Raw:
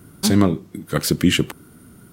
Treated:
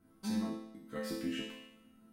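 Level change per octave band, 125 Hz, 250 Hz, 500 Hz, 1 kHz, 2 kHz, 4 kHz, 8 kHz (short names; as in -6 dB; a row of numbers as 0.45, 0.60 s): -27.5, -18.0, -18.5, -19.5, -20.0, -21.0, -25.5 dB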